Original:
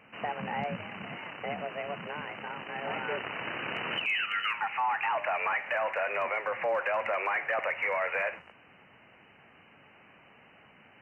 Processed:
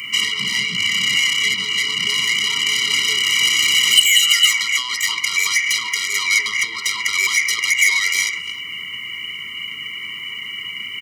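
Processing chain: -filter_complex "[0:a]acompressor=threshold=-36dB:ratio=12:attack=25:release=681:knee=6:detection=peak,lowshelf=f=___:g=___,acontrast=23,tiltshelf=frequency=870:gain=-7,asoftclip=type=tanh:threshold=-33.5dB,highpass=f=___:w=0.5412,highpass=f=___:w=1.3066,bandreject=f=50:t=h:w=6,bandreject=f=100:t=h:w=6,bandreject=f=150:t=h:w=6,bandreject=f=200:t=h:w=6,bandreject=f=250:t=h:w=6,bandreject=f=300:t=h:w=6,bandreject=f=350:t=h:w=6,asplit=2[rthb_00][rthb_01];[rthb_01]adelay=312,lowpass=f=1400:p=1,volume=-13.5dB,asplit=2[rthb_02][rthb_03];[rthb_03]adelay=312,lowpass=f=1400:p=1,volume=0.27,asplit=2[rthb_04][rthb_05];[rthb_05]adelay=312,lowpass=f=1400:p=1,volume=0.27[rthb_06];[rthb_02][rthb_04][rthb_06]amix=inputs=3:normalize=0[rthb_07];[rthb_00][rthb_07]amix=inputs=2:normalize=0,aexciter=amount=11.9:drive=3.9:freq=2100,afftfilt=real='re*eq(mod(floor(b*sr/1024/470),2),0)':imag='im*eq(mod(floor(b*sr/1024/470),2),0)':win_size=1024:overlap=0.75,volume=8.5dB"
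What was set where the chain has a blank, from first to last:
240, 10, 43, 43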